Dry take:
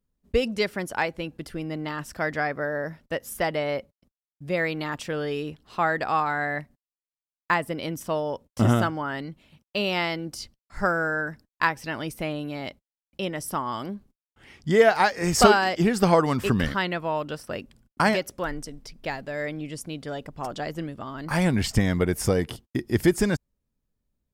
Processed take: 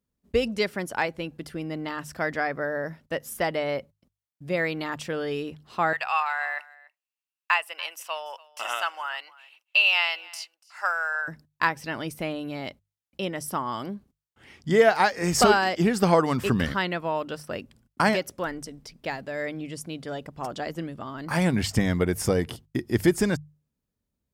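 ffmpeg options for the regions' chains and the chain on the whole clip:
-filter_complex "[0:a]asettb=1/sr,asplit=3[a][b][c];[a]atrim=end=5.934[d];[b]atrim=start=5.93:end=11.28,asetpts=PTS-STARTPTS,afade=t=in:d=0.004:c=qsin,afade=t=out:st=5.346:d=0.004:c=qsin,highpass=f=780:w=0.5412,highpass=f=780:w=1.3066,equalizer=f=2.7k:t=o:w=0.22:g=15,aecho=1:1:289:0.0794,atrim=end_sample=235935[e];[c]atrim=start=11.276[f];[d][e]acrossfade=d=0.004:c1=hsin:c2=qsin[g];[g][f]acrossfade=d=0.004:c1=qsin:c2=hsin,highpass=51,bandreject=f=50:t=h:w=6,bandreject=f=100:t=h:w=6,bandreject=f=150:t=h:w=6,alimiter=level_in=5.5dB:limit=-1dB:release=50:level=0:latency=1,volume=-6dB"

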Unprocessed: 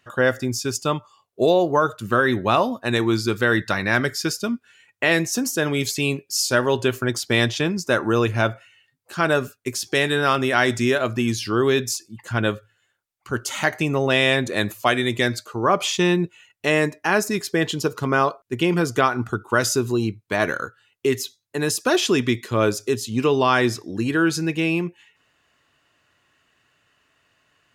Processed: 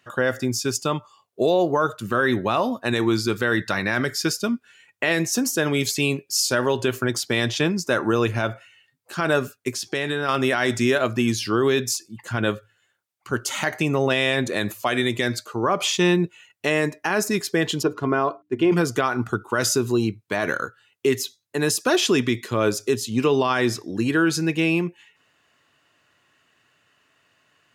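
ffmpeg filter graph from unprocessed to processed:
-filter_complex "[0:a]asettb=1/sr,asplit=3[a][b][c];[a]atrim=end=9.724[d];[b]atrim=start=9.72:end=10.29,asetpts=PTS-STARTPTS,afade=t=in:d=0.004:c=qsin,afade=t=out:st=0.566:d=0.004:c=qsin,highshelf=f=7.1k:g=-8,acompressor=threshold=-22dB:ratio=4:attack=3.2:release=140:knee=1:detection=peak[e];[c]atrim=start=10.286[f];[d][e]acrossfade=d=0.004:c1=hsin:c2=qsin[g];[g][f]acrossfade=d=0.004:c1=qsin:c2=hsin,asettb=1/sr,asplit=3[h][i][j];[h]atrim=end=17.834[k];[i]atrim=start=17.83:end=18.72,asetpts=PTS-STARTPTS,afade=t=in:d=0.004:c=qsin,afade=t=out:st=0.886:d=0.004:c=qsin,lowpass=f=1.3k:p=1,bandreject=f=60:t=h:w=6,bandreject=f=120:t=h:w=6,bandreject=f=180:t=h:w=6,bandreject=f=240:t=h:w=6,bandreject=f=300:t=h:w=6,aecho=1:1:2.9:0.39,atrim=end_sample=39249[l];[j]atrim=start=18.716[m];[k][l]acrossfade=d=0.004:c1=hsin:c2=qsin[n];[n][m]acrossfade=d=0.004:c1=qsin:c2=hsin,highpass=100,alimiter=level_in=10dB:limit=-1dB:release=50:level=0:latency=1,volume=-9dB"

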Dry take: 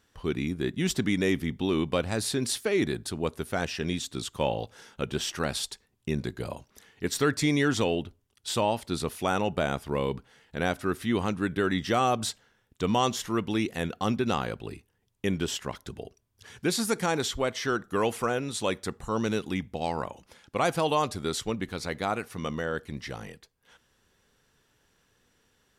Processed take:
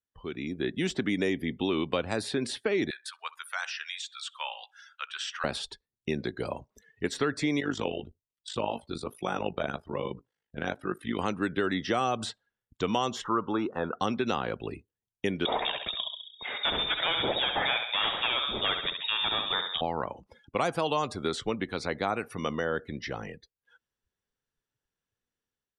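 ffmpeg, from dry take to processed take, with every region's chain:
-filter_complex "[0:a]asettb=1/sr,asplit=3[a][b][c];[a]atrim=end=2.904[d];[b]atrim=start=2.9:end=5.44,asetpts=PTS-STARTPTS,afade=t=in:d=0.004:c=qsin,afade=t=out:st=2.536:d=0.004:c=qsin,highpass=f=1.1k:w=0.5412,highpass=f=1.1k:w=1.3066,asplit=2[e][f];[f]adelay=64,lowpass=f=3.7k:p=1,volume=-16dB,asplit=2[g][h];[h]adelay=64,lowpass=f=3.7k:p=1,volume=0.53,asplit=2[i][j];[j]adelay=64,lowpass=f=3.7k:p=1,volume=0.53,asplit=2[k][l];[l]adelay=64,lowpass=f=3.7k:p=1,volume=0.53,asplit=2[m][n];[n]adelay=64,lowpass=f=3.7k:p=1,volume=0.53[o];[e][g][i][k][m][o]amix=inputs=6:normalize=0,atrim=end_sample=112014[p];[c]atrim=start=5.436[q];[d][p]acrossfade=d=0.004:c1=hsin:c2=qsin[r];[r][q]acrossfade=d=0.004:c1=qsin:c2=hsin,asettb=1/sr,asplit=3[s][t][u];[s]atrim=end=7.604[v];[t]atrim=start=7.6:end=11.19,asetpts=PTS-STARTPTS,afade=t=in:d=0.004:c=qsin,afade=t=out:st=3.586:d=0.004:c=qsin,flanger=delay=5.6:depth=8.3:regen=21:speed=1.2:shape=sinusoidal,tremolo=f=51:d=0.788[w];[u]atrim=start=11.186[x];[v][w]acrossfade=d=0.004:c1=hsin:c2=qsin[y];[y][x]acrossfade=d=0.004:c1=qsin:c2=hsin,asettb=1/sr,asplit=3[z][aa][ab];[z]atrim=end=13.244[ac];[aa]atrim=start=13.24:end=13.98,asetpts=PTS-STARTPTS,afade=t=in:d=0.004:c=qsin,afade=t=out:st=0.736:d=0.004:c=qsin,asplit=2[ad][ae];[ae]highpass=f=720:p=1,volume=9dB,asoftclip=type=tanh:threshold=-14.5dB[af];[ad][af]amix=inputs=2:normalize=0,lowpass=f=2.7k:p=1,volume=-6dB,highshelf=f=1.6k:t=q:w=3:g=-8.5,bandreject=f=710:w=8.2[ag];[ab]atrim=start=13.976[ah];[ac][ag]acrossfade=d=0.004:c1=hsin:c2=qsin[ai];[ai][ah]acrossfade=d=0.004:c1=qsin:c2=hsin,asettb=1/sr,asplit=3[aj][ak][al];[aj]atrim=end=15.454[am];[ak]atrim=start=15.45:end=19.81,asetpts=PTS-STARTPTS,afade=t=in:d=0.004:c=qsin,afade=t=out:st=4.356:d=0.004:c=qsin,aeval=exprs='0.211*sin(PI/2*2.51*val(0)/0.211)':c=same,aecho=1:1:67|134|201|268|335|402:0.447|0.214|0.103|0.0494|0.0237|0.0114,atrim=end_sample=192276,lowpass=f=3.2k:t=q:w=0.5098,lowpass=f=3.2k:t=q:w=0.6013,lowpass=f=3.2k:t=q:w=0.9,lowpass=f=3.2k:t=q:w=2.563,afreqshift=-3800[an];[al]atrim=start=19.806[ao];[am][an]acrossfade=d=0.004:c1=hsin:c2=qsin[ap];[ap][ao]acrossfade=d=0.004:c1=qsin:c2=hsin,acrossover=split=230|1300|3500[aq][ar][as][at];[aq]acompressor=threshold=-45dB:ratio=4[au];[ar]acompressor=threshold=-30dB:ratio=4[av];[as]acompressor=threshold=-39dB:ratio=4[aw];[at]acompressor=threshold=-46dB:ratio=4[ax];[au][av][aw][ax]amix=inputs=4:normalize=0,afftdn=nr=26:nf=-50,dynaudnorm=f=350:g=3:m=8.5dB,volume=-5dB"

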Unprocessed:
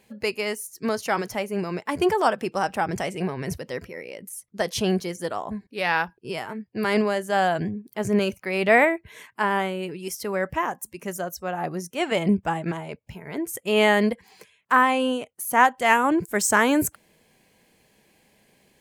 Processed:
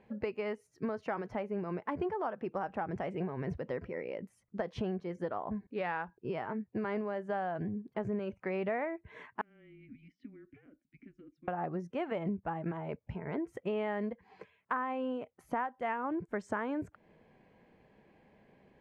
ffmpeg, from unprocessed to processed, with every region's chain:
-filter_complex "[0:a]asettb=1/sr,asplit=3[a][b][c];[a]atrim=end=9.414[d];[b]atrim=start=9.41:end=11.48,asetpts=PTS-STARTPTS,afade=t=in:d=0.004:c=qsin,afade=t=out:st=2.066:d=0.004:c=qsin,afreqshift=-210,acompressor=threshold=-33dB:ratio=16:attack=3.2:release=140:knee=1:detection=peak,asplit=3[e][f][g];[e]bandpass=f=270:t=q:w=8,volume=0dB[h];[f]bandpass=f=2.29k:t=q:w=8,volume=-6dB[i];[g]bandpass=f=3.01k:t=q:w=8,volume=-9dB[j];[h][i][j]amix=inputs=3:normalize=0[k];[c]atrim=start=11.476[l];[d][k]acrossfade=d=0.004:c1=hsin:c2=qsin[m];[m][l]acrossfade=d=0.004:c1=qsin:c2=hsin,lowpass=1.5k,acompressor=threshold=-33dB:ratio=6"

